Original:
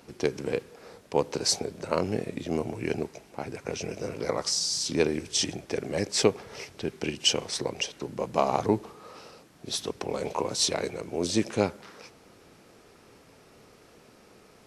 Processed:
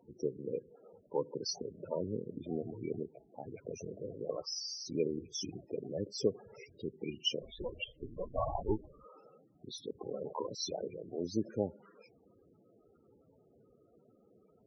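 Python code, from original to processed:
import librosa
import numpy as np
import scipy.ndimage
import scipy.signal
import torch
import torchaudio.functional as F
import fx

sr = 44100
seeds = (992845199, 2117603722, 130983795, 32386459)

y = fx.lpc_vocoder(x, sr, seeds[0], excitation='pitch_kept', order=10, at=(7.42, 9.04))
y = fx.spec_topn(y, sr, count=16)
y = y * 10.0 ** (-8.0 / 20.0)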